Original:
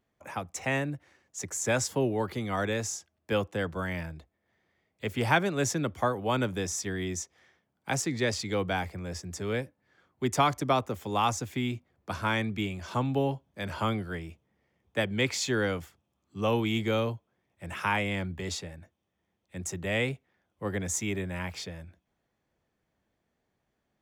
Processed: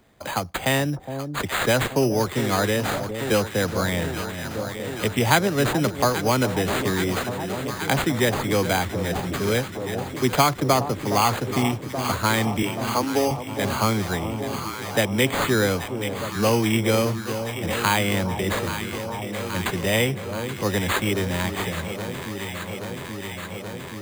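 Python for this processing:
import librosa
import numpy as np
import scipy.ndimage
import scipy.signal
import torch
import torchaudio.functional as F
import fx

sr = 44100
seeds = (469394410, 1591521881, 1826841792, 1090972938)

y = fx.highpass(x, sr, hz=260.0, slope=24, at=(12.62, 13.31))
y = np.repeat(y[::8], 8)[:len(y)]
y = fx.echo_alternate(y, sr, ms=414, hz=930.0, feedback_pct=86, wet_db=-11.0)
y = fx.band_squash(y, sr, depth_pct=40)
y = y * librosa.db_to_amplitude(7.5)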